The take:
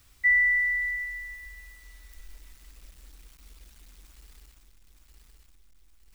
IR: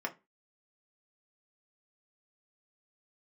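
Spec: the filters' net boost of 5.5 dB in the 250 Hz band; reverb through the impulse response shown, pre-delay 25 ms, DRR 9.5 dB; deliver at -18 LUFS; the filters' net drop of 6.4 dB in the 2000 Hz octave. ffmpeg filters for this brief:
-filter_complex "[0:a]equalizer=f=250:t=o:g=7,equalizer=f=2k:t=o:g=-6.5,asplit=2[a][b];[1:a]atrim=start_sample=2205,adelay=25[c];[b][c]afir=irnorm=-1:irlink=0,volume=-13.5dB[d];[a][d]amix=inputs=2:normalize=0,volume=13dB"

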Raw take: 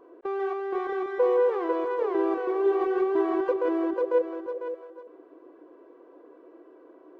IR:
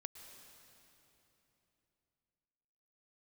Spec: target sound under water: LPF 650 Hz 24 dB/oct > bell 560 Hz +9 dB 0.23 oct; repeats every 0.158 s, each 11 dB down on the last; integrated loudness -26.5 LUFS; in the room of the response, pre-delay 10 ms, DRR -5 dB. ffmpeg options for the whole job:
-filter_complex "[0:a]aecho=1:1:158|316|474:0.282|0.0789|0.0221,asplit=2[a][b];[1:a]atrim=start_sample=2205,adelay=10[c];[b][c]afir=irnorm=-1:irlink=0,volume=9.5dB[d];[a][d]amix=inputs=2:normalize=0,lowpass=f=650:w=0.5412,lowpass=f=650:w=1.3066,equalizer=f=560:t=o:w=0.23:g=9,volume=-9.5dB"

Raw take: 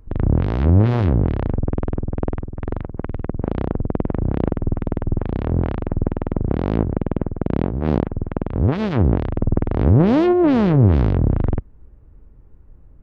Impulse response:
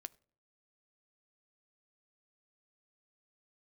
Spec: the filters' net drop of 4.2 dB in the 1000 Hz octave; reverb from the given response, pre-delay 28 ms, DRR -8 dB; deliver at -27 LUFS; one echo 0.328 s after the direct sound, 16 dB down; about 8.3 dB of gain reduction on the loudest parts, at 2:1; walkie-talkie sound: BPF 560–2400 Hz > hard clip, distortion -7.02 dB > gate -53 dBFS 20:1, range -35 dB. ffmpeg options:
-filter_complex "[0:a]equalizer=f=1k:t=o:g=-4.5,acompressor=threshold=-24dB:ratio=2,aecho=1:1:328:0.158,asplit=2[a][b];[1:a]atrim=start_sample=2205,adelay=28[c];[b][c]afir=irnorm=-1:irlink=0,volume=13.5dB[d];[a][d]amix=inputs=2:normalize=0,highpass=560,lowpass=2.4k,asoftclip=type=hard:threshold=-24dB,agate=range=-35dB:threshold=-53dB:ratio=20,volume=6.5dB"

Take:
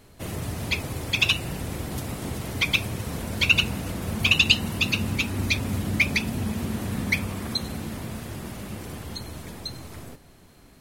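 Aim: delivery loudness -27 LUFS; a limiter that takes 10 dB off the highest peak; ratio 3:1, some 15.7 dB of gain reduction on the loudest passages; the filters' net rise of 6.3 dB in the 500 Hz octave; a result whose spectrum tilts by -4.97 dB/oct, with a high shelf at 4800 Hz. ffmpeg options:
-af "equalizer=f=500:t=o:g=8,highshelf=f=4.8k:g=-4,acompressor=threshold=-37dB:ratio=3,volume=13.5dB,alimiter=limit=-17.5dB:level=0:latency=1"

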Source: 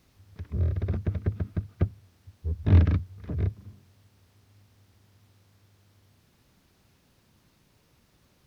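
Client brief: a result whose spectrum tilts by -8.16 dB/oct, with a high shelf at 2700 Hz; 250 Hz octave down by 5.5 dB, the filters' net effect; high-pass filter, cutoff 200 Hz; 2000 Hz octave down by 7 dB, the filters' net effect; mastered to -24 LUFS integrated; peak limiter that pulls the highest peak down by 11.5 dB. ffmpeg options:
-af "highpass=200,equalizer=f=250:t=o:g=-4,equalizer=f=2k:t=o:g=-7,highshelf=f=2.7k:g=-5,volume=19.5dB,alimiter=limit=-10.5dB:level=0:latency=1"

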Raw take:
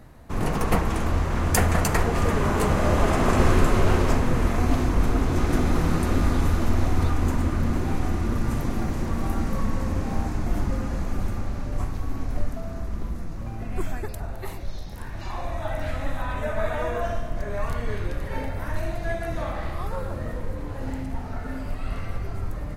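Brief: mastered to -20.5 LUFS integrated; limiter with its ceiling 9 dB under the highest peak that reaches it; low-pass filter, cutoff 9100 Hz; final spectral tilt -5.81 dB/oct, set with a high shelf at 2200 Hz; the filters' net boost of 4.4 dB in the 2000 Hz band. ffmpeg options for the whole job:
-af "lowpass=9.1k,equalizer=f=2k:t=o:g=3.5,highshelf=f=2.2k:g=4,volume=7dB,alimiter=limit=-6dB:level=0:latency=1"

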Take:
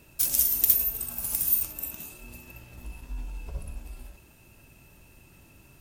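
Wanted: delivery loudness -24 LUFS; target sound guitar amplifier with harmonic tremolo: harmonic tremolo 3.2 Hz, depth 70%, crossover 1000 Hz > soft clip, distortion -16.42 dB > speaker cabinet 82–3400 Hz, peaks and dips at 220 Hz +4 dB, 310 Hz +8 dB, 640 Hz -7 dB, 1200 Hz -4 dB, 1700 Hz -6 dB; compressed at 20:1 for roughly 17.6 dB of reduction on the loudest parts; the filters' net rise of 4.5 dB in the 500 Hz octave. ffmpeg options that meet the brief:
-filter_complex "[0:a]equalizer=f=500:t=o:g=6.5,acompressor=threshold=-33dB:ratio=20,acrossover=split=1000[a][b];[a]aeval=exprs='val(0)*(1-0.7/2+0.7/2*cos(2*PI*3.2*n/s))':c=same[c];[b]aeval=exprs='val(0)*(1-0.7/2-0.7/2*cos(2*PI*3.2*n/s))':c=same[d];[c][d]amix=inputs=2:normalize=0,asoftclip=threshold=-32dB,highpass=82,equalizer=f=220:t=q:w=4:g=4,equalizer=f=310:t=q:w=4:g=8,equalizer=f=640:t=q:w=4:g=-7,equalizer=f=1.2k:t=q:w=4:g=-4,equalizer=f=1.7k:t=q:w=4:g=-6,lowpass=f=3.4k:w=0.5412,lowpass=f=3.4k:w=1.3066,volume=29.5dB"

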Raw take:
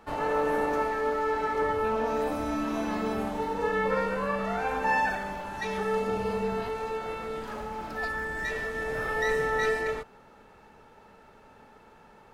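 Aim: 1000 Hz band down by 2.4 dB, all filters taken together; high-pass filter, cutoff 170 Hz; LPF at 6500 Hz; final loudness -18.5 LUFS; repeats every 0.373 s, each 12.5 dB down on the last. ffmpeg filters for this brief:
-af "highpass=170,lowpass=6.5k,equalizer=f=1k:t=o:g=-3,aecho=1:1:373|746|1119:0.237|0.0569|0.0137,volume=12dB"

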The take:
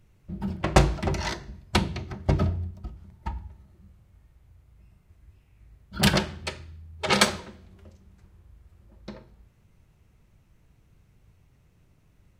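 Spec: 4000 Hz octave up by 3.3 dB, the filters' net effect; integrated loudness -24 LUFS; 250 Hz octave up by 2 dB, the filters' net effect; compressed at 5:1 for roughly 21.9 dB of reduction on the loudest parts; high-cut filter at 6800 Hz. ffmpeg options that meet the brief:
-af "lowpass=6.8k,equalizer=f=250:t=o:g=3,equalizer=f=4k:t=o:g=4.5,acompressor=threshold=-39dB:ratio=5,volume=20dB"

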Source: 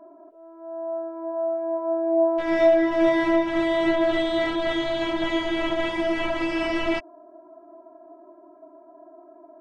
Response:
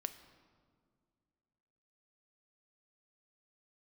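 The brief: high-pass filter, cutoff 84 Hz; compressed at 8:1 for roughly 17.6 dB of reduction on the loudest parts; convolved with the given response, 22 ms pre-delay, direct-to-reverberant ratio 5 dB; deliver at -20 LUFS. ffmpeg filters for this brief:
-filter_complex "[0:a]highpass=84,acompressor=threshold=-32dB:ratio=8,asplit=2[a][b];[1:a]atrim=start_sample=2205,adelay=22[c];[b][c]afir=irnorm=-1:irlink=0,volume=-3.5dB[d];[a][d]amix=inputs=2:normalize=0,volume=16.5dB"

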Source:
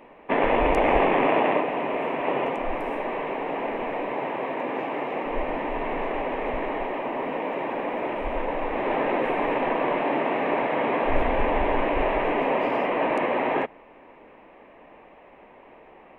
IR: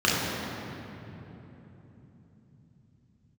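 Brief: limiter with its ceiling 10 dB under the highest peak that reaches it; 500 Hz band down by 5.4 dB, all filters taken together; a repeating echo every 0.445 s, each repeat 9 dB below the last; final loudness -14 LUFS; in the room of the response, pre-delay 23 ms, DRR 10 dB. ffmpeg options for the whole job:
-filter_complex "[0:a]equalizer=f=500:t=o:g=-7,alimiter=limit=-20dB:level=0:latency=1,aecho=1:1:445|890|1335|1780:0.355|0.124|0.0435|0.0152,asplit=2[a][b];[1:a]atrim=start_sample=2205,adelay=23[c];[b][c]afir=irnorm=-1:irlink=0,volume=-28dB[d];[a][d]amix=inputs=2:normalize=0,volume=15.5dB"

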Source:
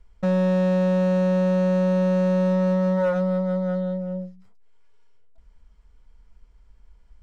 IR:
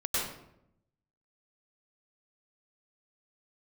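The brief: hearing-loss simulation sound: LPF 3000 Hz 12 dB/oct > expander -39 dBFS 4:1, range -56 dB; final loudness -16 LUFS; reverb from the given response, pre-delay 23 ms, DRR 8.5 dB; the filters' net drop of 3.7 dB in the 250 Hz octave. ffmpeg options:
-filter_complex "[0:a]equalizer=f=250:t=o:g=-6.5,asplit=2[a][b];[1:a]atrim=start_sample=2205,adelay=23[c];[b][c]afir=irnorm=-1:irlink=0,volume=-16.5dB[d];[a][d]amix=inputs=2:normalize=0,lowpass=3k,agate=range=-56dB:threshold=-39dB:ratio=4,volume=6.5dB"

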